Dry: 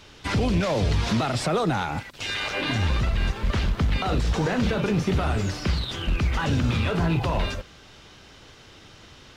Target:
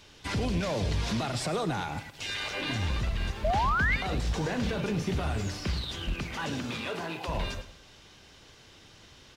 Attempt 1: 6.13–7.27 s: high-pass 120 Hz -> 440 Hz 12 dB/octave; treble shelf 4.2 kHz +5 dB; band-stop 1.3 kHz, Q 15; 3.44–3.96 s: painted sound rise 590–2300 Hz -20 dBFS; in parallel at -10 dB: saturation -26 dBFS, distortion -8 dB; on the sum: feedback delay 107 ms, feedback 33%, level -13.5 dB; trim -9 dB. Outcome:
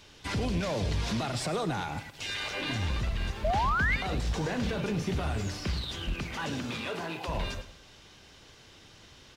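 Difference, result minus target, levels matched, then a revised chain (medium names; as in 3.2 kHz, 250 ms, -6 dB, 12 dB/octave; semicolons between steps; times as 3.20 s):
saturation: distortion +8 dB
6.13–7.27 s: high-pass 120 Hz -> 440 Hz 12 dB/octave; treble shelf 4.2 kHz +5 dB; band-stop 1.3 kHz, Q 15; 3.44–3.96 s: painted sound rise 590–2300 Hz -20 dBFS; in parallel at -10 dB: saturation -17 dBFS, distortion -16 dB; on the sum: feedback delay 107 ms, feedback 33%, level -13.5 dB; trim -9 dB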